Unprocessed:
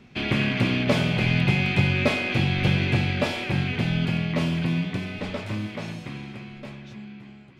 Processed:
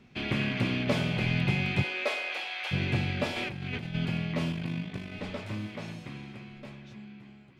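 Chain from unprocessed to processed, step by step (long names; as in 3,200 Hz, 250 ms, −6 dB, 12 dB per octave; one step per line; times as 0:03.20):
0:01.82–0:02.71: high-pass filter 340 Hz → 740 Hz 24 dB per octave
0:03.36–0:03.95: compressor whose output falls as the input rises −30 dBFS, ratio −1
0:04.52–0:05.12: amplitude modulation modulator 50 Hz, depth 50%
level −6 dB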